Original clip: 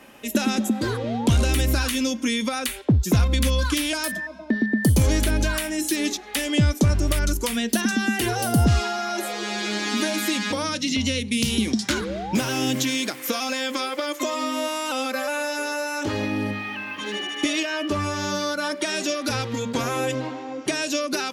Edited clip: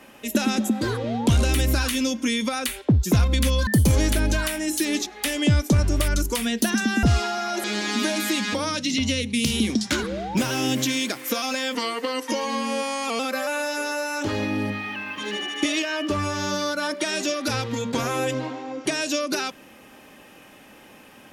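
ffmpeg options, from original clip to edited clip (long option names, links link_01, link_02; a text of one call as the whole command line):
ffmpeg -i in.wav -filter_complex "[0:a]asplit=6[link_01][link_02][link_03][link_04][link_05][link_06];[link_01]atrim=end=3.672[link_07];[link_02]atrim=start=4.778:end=8.142[link_08];[link_03]atrim=start=8.638:end=9.252[link_09];[link_04]atrim=start=9.618:end=13.734[link_10];[link_05]atrim=start=13.73:end=15,asetpts=PTS-STARTPTS,asetrate=38808,aresample=44100,atrim=end_sample=63644,asetpts=PTS-STARTPTS[link_11];[link_06]atrim=start=14.996[link_12];[link_07][link_08]acrossfade=duration=0.004:curve1=hsin:curve2=hsin[link_13];[link_13][link_09]acrossfade=duration=0.004:curve1=hsin:curve2=hsin[link_14];[link_14][link_10]acrossfade=duration=0.004:curve1=hsin:curve2=hsin[link_15];[link_15][link_11]acrossfade=duration=0.004:curve1=hsin:curve2=hsin[link_16];[link_16][link_12]acrossfade=duration=0.004:curve1=hsin:curve2=hsin" out.wav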